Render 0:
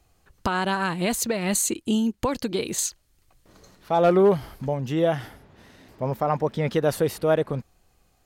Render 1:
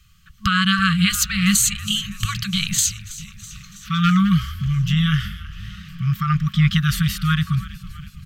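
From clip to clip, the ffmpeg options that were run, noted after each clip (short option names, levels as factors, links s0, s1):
-filter_complex "[0:a]equalizer=f=160:t=o:w=0.33:g=5,equalizer=f=3150:t=o:w=0.33:g=8,equalizer=f=10000:t=o:w=0.33:g=-8,asplit=7[s0][s1][s2][s3][s4][s5][s6];[s1]adelay=326,afreqshift=-110,volume=0.141[s7];[s2]adelay=652,afreqshift=-220,volume=0.0891[s8];[s3]adelay=978,afreqshift=-330,volume=0.0562[s9];[s4]adelay=1304,afreqshift=-440,volume=0.0355[s10];[s5]adelay=1630,afreqshift=-550,volume=0.0221[s11];[s6]adelay=1956,afreqshift=-660,volume=0.014[s12];[s0][s7][s8][s9][s10][s11][s12]amix=inputs=7:normalize=0,afftfilt=real='re*(1-between(b*sr/4096,210,1100))':imag='im*(1-between(b*sr/4096,210,1100))':win_size=4096:overlap=0.75,volume=2.66"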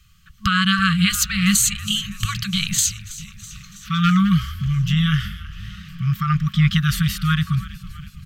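-af anull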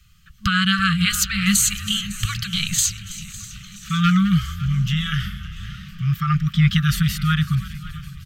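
-af "flanger=delay=1.4:depth=1.9:regen=-71:speed=0.28:shape=triangular,asuperstop=centerf=720:order=20:qfactor=1,aecho=1:1:556|1112|1668|2224|2780:0.112|0.0617|0.0339|0.0187|0.0103,volume=1.58"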